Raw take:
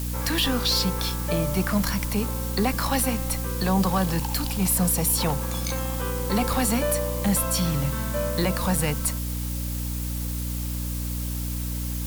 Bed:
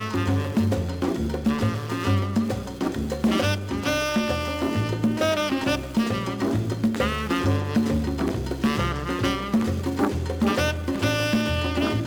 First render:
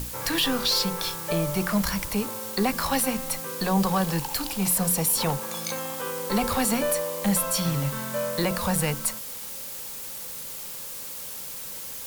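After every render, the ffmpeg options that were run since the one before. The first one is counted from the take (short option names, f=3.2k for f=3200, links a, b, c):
-af "bandreject=f=60:t=h:w=6,bandreject=f=120:t=h:w=6,bandreject=f=180:t=h:w=6,bandreject=f=240:t=h:w=6,bandreject=f=300:t=h:w=6,bandreject=f=360:t=h:w=6"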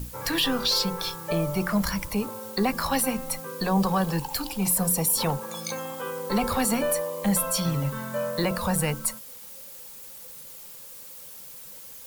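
-af "afftdn=nr=9:nf=-37"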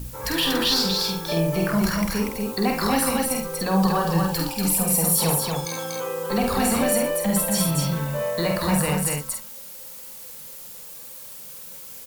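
-filter_complex "[0:a]asplit=2[a][b];[b]adelay=48,volume=-4dB[c];[a][c]amix=inputs=2:normalize=0,aecho=1:1:72.89|239.1:0.355|0.708"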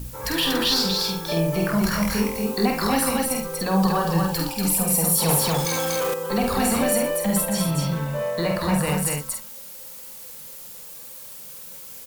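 -filter_complex "[0:a]asettb=1/sr,asplit=3[a][b][c];[a]atrim=end=1.894[d];[b]atrim=start=1.89:end=2.66,asetpts=PTS-STARTPTS,afade=t=in:d=0.004:c=qsin,afade=t=out:st=0.766:d=0.004:c=qsin,asplit=2[e][f];[f]adelay=23,volume=-2.5dB[g];[e][g]amix=inputs=2:normalize=0,atrim=end_sample=33957[h];[c]atrim=start=2.656[i];[d][h]acrossfade=d=0.004:c1=hsin:c2=qsin[j];[j][i]acrossfade=d=0.004:c1=qsin:c2=hsin,asettb=1/sr,asplit=3[k][l][m];[k]atrim=end=5.294[n];[l]atrim=start=5.29:end=6.14,asetpts=PTS-STARTPTS,afade=t=in:d=0.004:c=qsin,afade=t=out:st=0.846:d=0.004:c=qsin,aeval=exprs='val(0)+0.5*0.0668*sgn(val(0))':c=same[o];[m]atrim=start=6.136[p];[n][o]acrossfade=d=0.004:c1=hsin:c2=qsin[q];[q][p]acrossfade=d=0.004:c1=qsin:c2=hsin,asettb=1/sr,asplit=3[r][s][t];[r]atrim=end=7.454[u];[s]atrim=start=7.45:end=8.87,asetpts=PTS-STARTPTS,afade=t=in:d=0.004:c=qsin,afade=t=out:st=1.416:d=0.004:c=qsin,highshelf=f=5.6k:g=-6.5[v];[t]atrim=start=8.866[w];[u][v]acrossfade=d=0.004:c1=hsin:c2=qsin[x];[x][w]acrossfade=d=0.004:c1=qsin:c2=hsin"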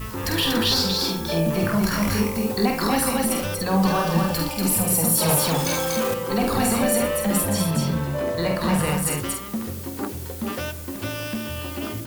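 -filter_complex "[1:a]volume=-7dB[a];[0:a][a]amix=inputs=2:normalize=0"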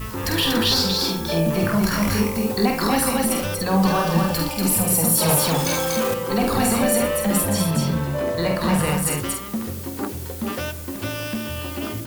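-af "volume=1.5dB"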